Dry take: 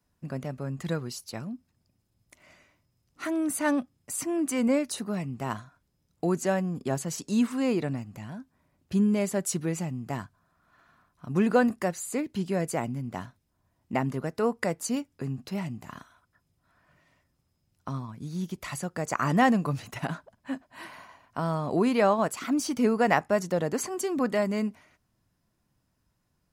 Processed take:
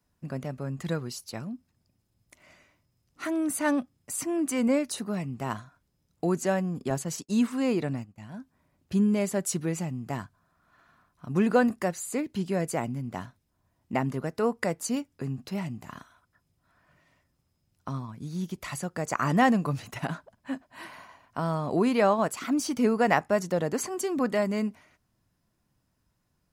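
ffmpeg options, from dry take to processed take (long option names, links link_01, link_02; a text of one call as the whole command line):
ffmpeg -i in.wav -filter_complex "[0:a]asettb=1/sr,asplit=3[link_01][link_02][link_03];[link_01]atrim=end=6.904[link_04];[link_02]atrim=start=6.9:end=8.34,asetpts=PTS-STARTPTS,afade=type=in:duration=0.004:curve=qsin,afade=type=out:start_time=1.436:duration=0.004:curve=qsin,agate=range=-33dB:threshold=-36dB:ratio=3:release=100:detection=peak[link_05];[link_03]atrim=start=8.336[link_06];[link_04][link_05]acrossfade=duration=0.004:curve1=hsin:curve2=qsin[link_07];[link_07][link_06]acrossfade=duration=0.004:curve1=qsin:curve2=hsin" out.wav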